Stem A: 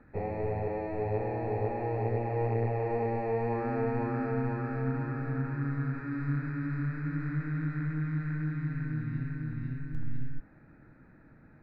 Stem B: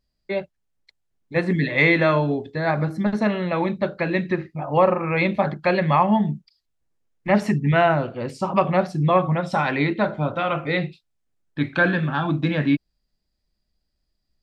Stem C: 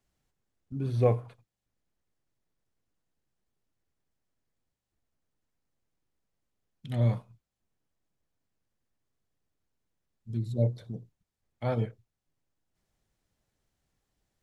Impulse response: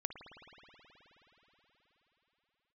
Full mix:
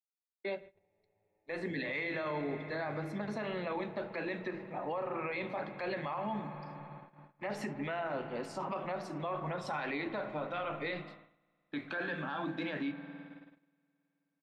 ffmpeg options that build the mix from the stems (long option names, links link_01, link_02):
-filter_complex "[0:a]acrossover=split=120[link_01][link_02];[link_01]acompressor=threshold=-44dB:ratio=6[link_03];[link_03][link_02]amix=inputs=2:normalize=0,equalizer=frequency=330:width=0.57:gain=-5,acompressor=threshold=-41dB:ratio=4,adelay=600,volume=-12dB,asplit=2[link_04][link_05];[link_05]volume=-9.5dB[link_06];[1:a]highpass=100,adelay=150,volume=-6dB,asplit=2[link_07][link_08];[link_08]volume=-9dB[link_09];[link_07]highpass=frequency=180:width=0.5412,highpass=frequency=180:width=1.3066,acompressor=threshold=-26dB:ratio=6,volume=0dB[link_10];[3:a]atrim=start_sample=2205[link_11];[link_06][link_09]amix=inputs=2:normalize=0[link_12];[link_12][link_11]afir=irnorm=-1:irlink=0[link_13];[link_04][link_10][link_13]amix=inputs=3:normalize=0,flanger=delay=4.2:depth=3.4:regen=-78:speed=1.9:shape=sinusoidal,agate=range=-22dB:threshold=-49dB:ratio=16:detection=peak,alimiter=level_in=4.5dB:limit=-24dB:level=0:latency=1:release=18,volume=-4.5dB"